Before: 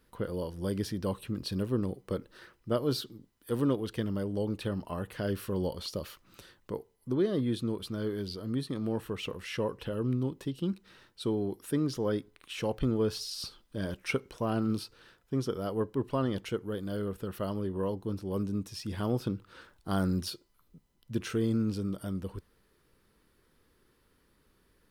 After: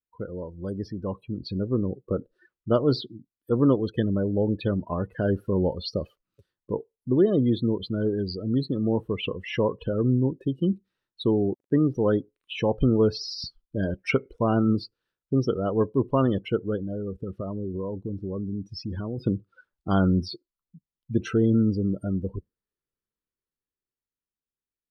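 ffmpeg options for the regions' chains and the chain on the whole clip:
ffmpeg -i in.wav -filter_complex "[0:a]asettb=1/sr,asplit=3[link_01][link_02][link_03];[link_01]atrim=end=11.534[link_04];[link_02]atrim=start=11.53:end=11.95,asetpts=PTS-STARTPTS,afade=type=in:duration=0.004:curve=qsin,afade=type=out:start_time=0.416:duration=0.004:curve=qsin,lowpass=2400,aeval=exprs='val(0)*gte(abs(val(0)),0.00422)':channel_layout=same[link_05];[link_03]atrim=start=11.946[link_06];[link_04][link_05]acrossfade=duration=0.004:curve1=hsin:curve2=qsin[link_07];[link_07][link_06]acrossfade=duration=0.004:curve1=qsin:curve2=hsin,asettb=1/sr,asplit=3[link_08][link_09][link_10];[link_08]atrim=end=16.764[link_11];[link_09]atrim=start=16.76:end=19.18,asetpts=PTS-STARTPTS,afade=type=in:duration=0.004:curve=qsin,afade=type=out:start_time=2.416:duration=0.004:curve=qsin,lowpass=7300,acompressor=threshold=-35dB:ratio=6:attack=3.2:release=140:knee=1:detection=peak[link_12];[link_10]atrim=start=19.176[link_13];[link_11][link_12]acrossfade=duration=0.004:curve1=hsin:curve2=qsin[link_14];[link_14][link_13]acrossfade=duration=0.004:curve1=qsin:curve2=hsin,deesser=0.85,afftdn=noise_reduction=34:noise_floor=-39,dynaudnorm=framelen=170:gausssize=21:maxgain=8dB" out.wav

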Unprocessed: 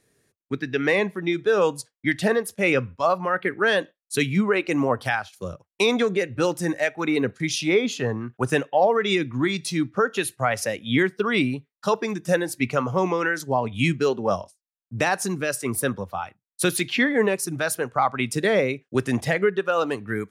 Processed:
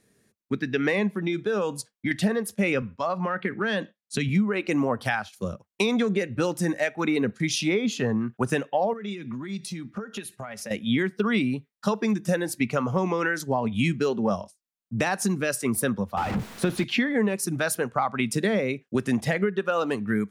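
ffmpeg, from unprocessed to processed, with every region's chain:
ffmpeg -i in.wav -filter_complex "[0:a]asettb=1/sr,asplit=3[link_01][link_02][link_03];[link_01]atrim=end=1.084[link_04];[link_02]atrim=start=1.08:end=2.11,asetpts=PTS-STARTPTS,afade=type=in:duration=0.004:curve=qsin,afade=type=out:start_time=1.026:duration=0.004:curve=qsin,bandreject=frequency=1900:width=20,acompressor=threshold=-24dB:ratio=2.5:attack=3.2:release=140:knee=1:detection=peak[link_05];[link_03]atrim=start=2.106[link_06];[link_04][link_05]acrossfade=duration=0.004:curve1=hsin:curve2=qsin[link_07];[link_07][link_06]acrossfade=duration=0.004:curve1=qsin:curve2=hsin,asettb=1/sr,asplit=3[link_08][link_09][link_10];[link_08]atrim=end=2.824[link_11];[link_09]atrim=start=2.82:end=4.29,asetpts=PTS-STARTPTS,afade=type=in:duration=0.004:curve=qsin,afade=type=out:start_time=1.466:duration=0.004:curve=qsin,highpass=120,lowpass=7000,asubboost=boost=7:cutoff=190,acompressor=threshold=-23dB:ratio=3:attack=3.2:release=140:knee=1:detection=peak[link_12];[link_10]atrim=start=4.286[link_13];[link_11][link_12]acrossfade=duration=0.004:curve1=hsin:curve2=qsin[link_14];[link_14][link_13]acrossfade=duration=0.004:curve1=qsin:curve2=hsin,asettb=1/sr,asplit=3[link_15][link_16][link_17];[link_15]atrim=end=8.934[link_18];[link_16]atrim=start=8.93:end=10.71,asetpts=PTS-STARTPTS,afade=type=in:duration=0.004:curve=qsin,afade=type=out:start_time=1.776:duration=0.004:curve=qsin,aecho=1:1:4.9:0.38,atrim=end_sample=78498,acompressor=threshold=-33dB:ratio=12:attack=3.2:release=140:knee=1:detection=peak[link_19];[link_17]atrim=start=10.706[link_20];[link_18][link_19]acrossfade=duration=0.004:curve1=hsin:curve2=qsin[link_21];[link_21][link_20]acrossfade=duration=0.004:curve1=qsin:curve2=hsin,asettb=1/sr,asplit=3[link_22][link_23][link_24];[link_22]atrim=end=16.174[link_25];[link_23]atrim=start=16.17:end=16.84,asetpts=PTS-STARTPTS,afade=type=in:duration=0.004:curve=qsin,afade=type=out:start_time=0.666:duration=0.004:curve=qsin,aeval=exprs='val(0)+0.5*0.075*sgn(val(0))':channel_layout=same,lowpass=frequency=1400:poles=1[link_26];[link_24]atrim=start=16.836[link_27];[link_25][link_26]acrossfade=duration=0.004:curve1=hsin:curve2=qsin[link_28];[link_28][link_27]acrossfade=duration=0.004:curve1=qsin:curve2=hsin,equalizer=frequency=210:width_type=o:width=0.36:gain=10.5,acompressor=threshold=-20dB:ratio=6" out.wav

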